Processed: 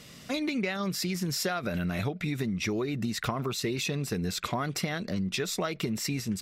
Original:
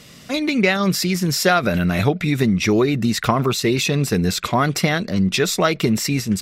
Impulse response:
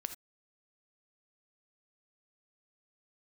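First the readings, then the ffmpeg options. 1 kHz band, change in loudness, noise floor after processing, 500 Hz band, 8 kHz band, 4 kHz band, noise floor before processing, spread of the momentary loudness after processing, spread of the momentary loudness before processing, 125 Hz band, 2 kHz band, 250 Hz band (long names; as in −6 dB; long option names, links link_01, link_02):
−13.5 dB, −12.0 dB, −49 dBFS, −13.5 dB, −10.5 dB, −11.0 dB, −43 dBFS, 2 LU, 3 LU, −12.0 dB, −12.5 dB, −12.0 dB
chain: -af "acompressor=threshold=-22dB:ratio=6,volume=-5.5dB"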